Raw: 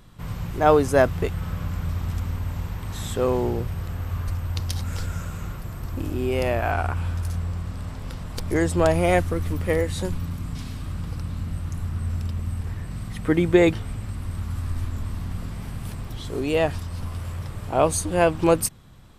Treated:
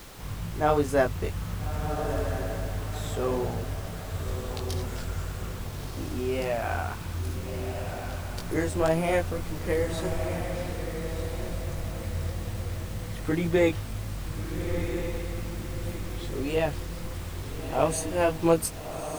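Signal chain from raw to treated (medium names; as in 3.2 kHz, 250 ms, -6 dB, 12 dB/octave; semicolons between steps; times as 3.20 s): chorus 2 Hz, delay 18 ms, depth 3 ms; added noise pink -43 dBFS; on a send: echo that smears into a reverb 1327 ms, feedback 43%, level -7 dB; on the sum: trim -2.5 dB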